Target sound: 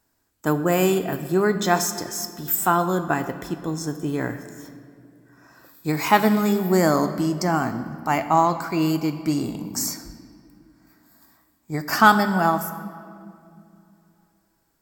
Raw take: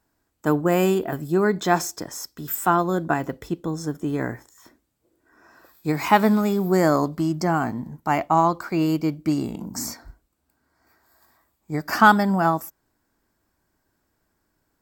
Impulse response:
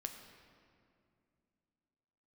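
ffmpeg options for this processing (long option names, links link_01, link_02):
-filter_complex "[0:a]asplit=2[link_01][link_02];[1:a]atrim=start_sample=2205,highshelf=frequency=2600:gain=9.5[link_03];[link_02][link_03]afir=irnorm=-1:irlink=0,volume=4dB[link_04];[link_01][link_04]amix=inputs=2:normalize=0,volume=-7dB"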